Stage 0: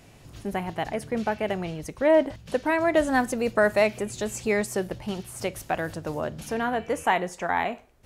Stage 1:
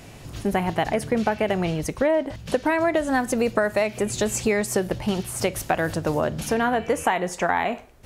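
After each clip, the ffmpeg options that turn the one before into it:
-af "acompressor=threshold=-26dB:ratio=12,volume=8.5dB"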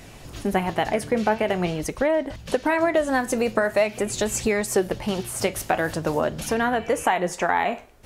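-af "equalizer=f=110:w=0.96:g=-4.5,flanger=delay=0.5:depth=9.6:regen=72:speed=0.45:shape=sinusoidal,volume=5dB"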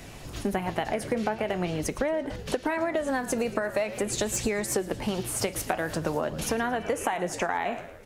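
-filter_complex "[0:a]asplit=5[a][b][c][d][e];[b]adelay=112,afreqshift=-70,volume=-17.5dB[f];[c]adelay=224,afreqshift=-140,volume=-23.2dB[g];[d]adelay=336,afreqshift=-210,volume=-28.9dB[h];[e]adelay=448,afreqshift=-280,volume=-34.5dB[i];[a][f][g][h][i]amix=inputs=5:normalize=0,acrossover=split=120|4800[j][k][l];[l]volume=22.5dB,asoftclip=hard,volume=-22.5dB[m];[j][k][m]amix=inputs=3:normalize=0,acompressor=threshold=-24dB:ratio=6"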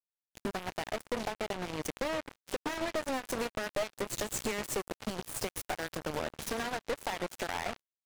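-af "aecho=1:1:134|268|402|536:0.0794|0.0405|0.0207|0.0105,acrusher=bits=3:mix=0:aa=0.5,aeval=exprs='(tanh(39.8*val(0)+0.3)-tanh(0.3))/39.8':c=same,volume=5dB"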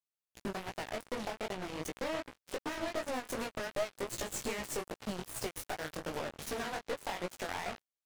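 -af "flanger=delay=15.5:depth=6.9:speed=2.6"

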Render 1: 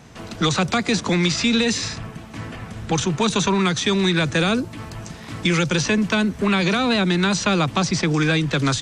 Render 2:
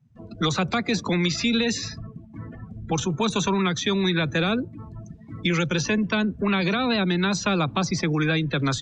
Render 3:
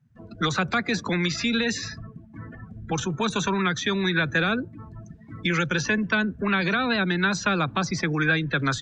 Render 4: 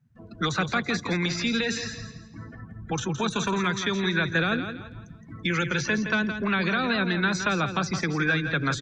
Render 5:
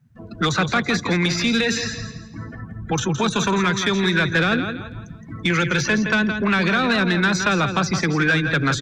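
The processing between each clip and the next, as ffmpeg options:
-af "afftdn=nr=32:nf=-30,volume=-3.5dB"
-af "equalizer=f=1.6k:t=o:w=0.58:g=9.5,volume=-2.5dB"
-af "aecho=1:1:167|334|501|668:0.355|0.117|0.0386|0.0128,volume=-2dB"
-af "asoftclip=type=tanh:threshold=-18dB,volume=7.5dB"

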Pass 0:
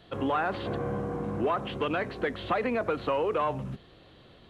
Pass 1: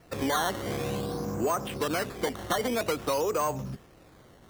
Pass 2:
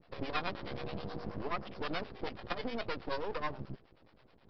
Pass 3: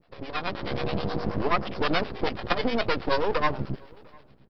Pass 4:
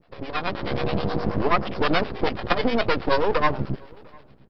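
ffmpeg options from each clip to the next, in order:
-af "acrusher=samples=12:mix=1:aa=0.000001:lfo=1:lforange=12:lforate=0.51"
-filter_complex "[0:a]acrossover=split=470[a][b];[a]aeval=exprs='val(0)*(1-1/2+1/2*cos(2*PI*9.4*n/s))':c=same[c];[b]aeval=exprs='val(0)*(1-1/2-1/2*cos(2*PI*9.4*n/s))':c=same[d];[c][d]amix=inputs=2:normalize=0,aresample=11025,aeval=exprs='max(val(0),0)':c=same,aresample=44100"
-filter_complex "[0:a]dynaudnorm=f=120:g=9:m=12.5dB,asplit=2[a][b];[b]adelay=699.7,volume=-27dB,highshelf=f=4k:g=-15.7[c];[a][c]amix=inputs=2:normalize=0"
-af "highshelf=f=4.6k:g=-5.5,volume=4dB"

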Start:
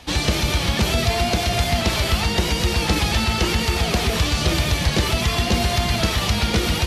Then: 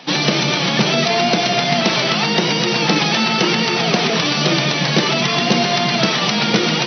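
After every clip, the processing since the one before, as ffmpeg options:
-af "afftfilt=real='re*between(b*sr/4096,120,6100)':imag='im*between(b*sr/4096,120,6100)':win_size=4096:overlap=0.75,volume=6dB"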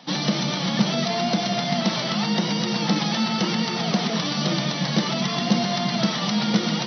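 -af "equalizer=f=200:t=o:w=0.33:g=9,equalizer=f=400:t=o:w=0.33:g=-7,equalizer=f=1.6k:t=o:w=0.33:g=-3,equalizer=f=2.5k:t=o:w=0.33:g=-8,volume=-7.5dB"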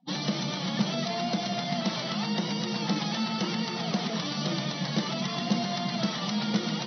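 -af "afftdn=nr=32:nf=-39,volume=-6.5dB"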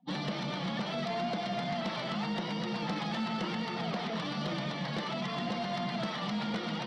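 -filter_complex "[0:a]lowpass=2.9k,acrossover=split=440[a][b];[a]alimiter=level_in=3.5dB:limit=-24dB:level=0:latency=1:release=352,volume=-3.5dB[c];[c][b]amix=inputs=2:normalize=0,asoftclip=type=tanh:threshold=-26.5dB"

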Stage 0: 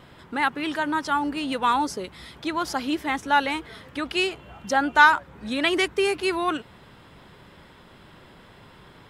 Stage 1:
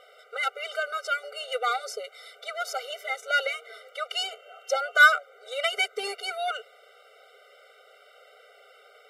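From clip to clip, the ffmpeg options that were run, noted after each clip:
-af "highpass=280,aeval=exprs='0.668*(cos(1*acos(clip(val(0)/0.668,-1,1)))-cos(1*PI/2))+0.0376*(cos(8*acos(clip(val(0)/0.668,-1,1)))-cos(8*PI/2))':c=same,afftfilt=real='re*eq(mod(floor(b*sr/1024/390),2),1)':imag='im*eq(mod(floor(b*sr/1024/390),2),1)':win_size=1024:overlap=0.75,volume=1dB"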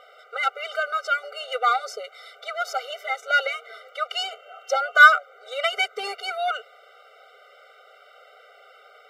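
-af "equalizer=f=400:t=o:w=0.67:g=-3,equalizer=f=1k:t=o:w=0.67:g=10,equalizer=f=10k:t=o:w=0.67:g=-8,volume=1.5dB"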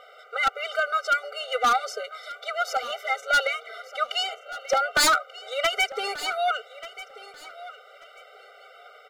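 -af "aeval=exprs='0.178*(abs(mod(val(0)/0.178+3,4)-2)-1)':c=same,aecho=1:1:1186|2372:0.15|0.0344,volume=1dB"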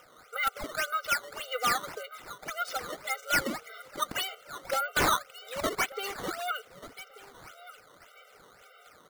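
-af "equalizer=f=690:w=2.5:g=-7,acrusher=samples=10:mix=1:aa=0.000001:lfo=1:lforange=16:lforate=1.8,volume=-5dB"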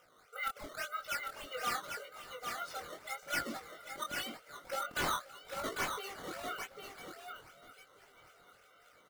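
-filter_complex "[0:a]flanger=delay=17.5:depth=7.7:speed=0.86,asplit=2[a][b];[b]aecho=0:1:530|798:0.106|0.531[c];[a][c]amix=inputs=2:normalize=0,volume=-6dB"

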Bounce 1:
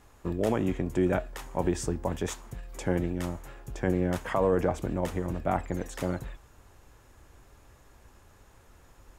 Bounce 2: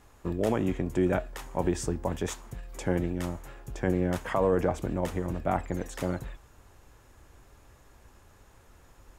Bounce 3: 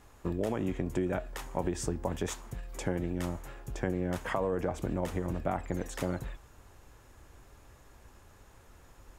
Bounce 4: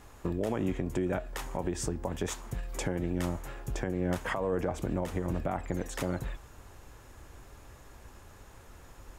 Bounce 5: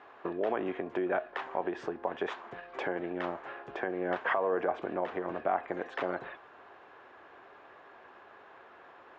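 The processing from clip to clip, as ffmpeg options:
-af anull
-af "acompressor=threshold=-27dB:ratio=6"
-af "alimiter=level_in=0.5dB:limit=-24dB:level=0:latency=1:release=344,volume=-0.5dB,volume=4.5dB"
-af "highpass=380,equalizer=f=390:t=q:w=4:g=5,equalizer=f=710:t=q:w=4:g=7,equalizer=f=1.1k:t=q:w=4:g=5,equalizer=f=1.6k:t=q:w=4:g=6,lowpass=f=3.3k:w=0.5412,lowpass=f=3.3k:w=1.3066"

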